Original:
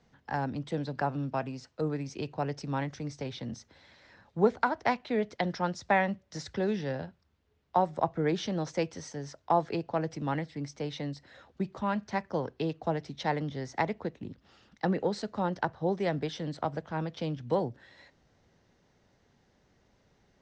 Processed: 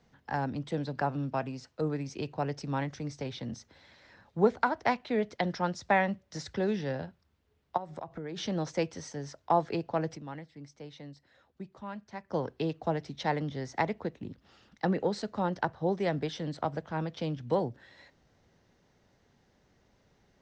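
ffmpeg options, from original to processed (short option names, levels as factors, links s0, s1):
-filter_complex "[0:a]asplit=3[s0][s1][s2];[s0]afade=t=out:st=7.76:d=0.02[s3];[s1]acompressor=threshold=0.0178:ratio=8:attack=3.2:release=140:knee=1:detection=peak,afade=t=in:st=7.76:d=0.02,afade=t=out:st=8.36:d=0.02[s4];[s2]afade=t=in:st=8.36:d=0.02[s5];[s3][s4][s5]amix=inputs=3:normalize=0,asplit=3[s6][s7][s8];[s6]atrim=end=10.41,asetpts=PTS-STARTPTS,afade=t=out:st=10.15:d=0.26:c=exp:silence=0.298538[s9];[s7]atrim=start=10.41:end=12.06,asetpts=PTS-STARTPTS,volume=0.299[s10];[s8]atrim=start=12.06,asetpts=PTS-STARTPTS,afade=t=in:d=0.26:c=exp:silence=0.298538[s11];[s9][s10][s11]concat=n=3:v=0:a=1"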